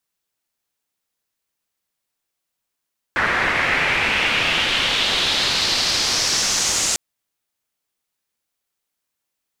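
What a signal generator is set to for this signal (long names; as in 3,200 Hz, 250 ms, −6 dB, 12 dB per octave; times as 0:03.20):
filter sweep on noise white, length 3.80 s lowpass, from 1,700 Hz, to 7,100 Hz, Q 2.7, exponential, gain ramp −6.5 dB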